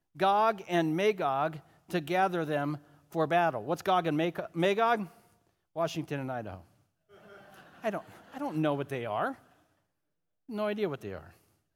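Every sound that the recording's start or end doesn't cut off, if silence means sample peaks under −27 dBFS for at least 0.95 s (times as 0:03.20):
0:07.85–0:09.29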